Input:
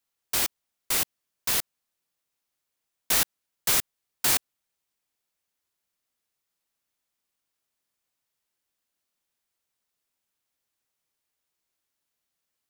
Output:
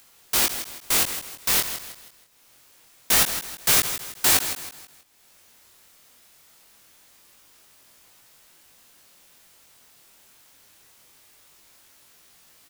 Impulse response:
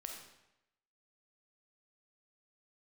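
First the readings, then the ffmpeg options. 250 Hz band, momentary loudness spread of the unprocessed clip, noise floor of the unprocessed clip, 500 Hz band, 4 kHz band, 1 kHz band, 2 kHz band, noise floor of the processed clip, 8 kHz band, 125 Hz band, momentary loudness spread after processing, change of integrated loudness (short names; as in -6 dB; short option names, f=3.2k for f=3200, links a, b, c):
+6.0 dB, 6 LU, -83 dBFS, +5.5 dB, +5.5 dB, +5.5 dB, +5.5 dB, -56 dBFS, +5.0 dB, +5.5 dB, 13 LU, +4.0 dB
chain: -filter_complex "[0:a]asplit=2[a][b];[b]acompressor=mode=upward:threshold=-31dB:ratio=2.5,volume=-1dB[c];[a][c]amix=inputs=2:normalize=0,aecho=1:1:160|320|480|640:0.299|0.113|0.0431|0.0164,flanger=delay=18.5:depth=6.7:speed=0.24,volume=2.5dB"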